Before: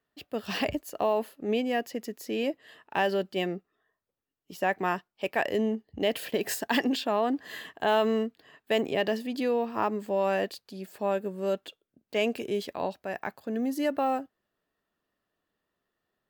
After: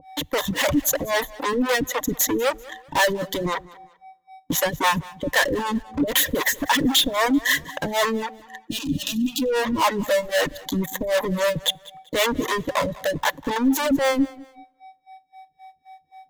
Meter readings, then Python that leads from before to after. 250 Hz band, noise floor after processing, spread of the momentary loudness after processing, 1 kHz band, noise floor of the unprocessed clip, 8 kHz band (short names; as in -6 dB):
+7.0 dB, -62 dBFS, 7 LU, +6.0 dB, -84 dBFS, +18.0 dB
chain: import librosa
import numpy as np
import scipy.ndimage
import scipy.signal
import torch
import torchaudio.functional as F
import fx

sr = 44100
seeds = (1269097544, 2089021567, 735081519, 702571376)

p1 = fx.fuzz(x, sr, gain_db=41.0, gate_db=-46.0)
p2 = x + (p1 * 10.0 ** (-6.0 / 20.0))
p3 = p2 + 10.0 ** (-39.0 / 20.0) * np.sin(2.0 * np.pi * 760.0 * np.arange(len(p2)) / sr)
p4 = fx.ripple_eq(p3, sr, per_octave=1.1, db=15)
p5 = 10.0 ** (-16.0 / 20.0) * np.tanh(p4 / 10.0 ** (-16.0 / 20.0))
p6 = fx.leveller(p5, sr, passes=2)
p7 = fx.harmonic_tremolo(p6, sr, hz=3.8, depth_pct=100, crossover_hz=460.0)
p8 = fx.rev_plate(p7, sr, seeds[0], rt60_s=1.4, hf_ratio=0.75, predelay_ms=0, drr_db=20.0)
p9 = fx.dereverb_blind(p8, sr, rt60_s=1.6)
p10 = fx.spec_box(p9, sr, start_s=8.69, length_s=0.73, low_hz=340.0, high_hz=2400.0, gain_db=-23)
p11 = p10 + fx.echo_feedback(p10, sr, ms=194, feedback_pct=32, wet_db=-21.0, dry=0)
y = p11 * 10.0 ** (3.0 / 20.0)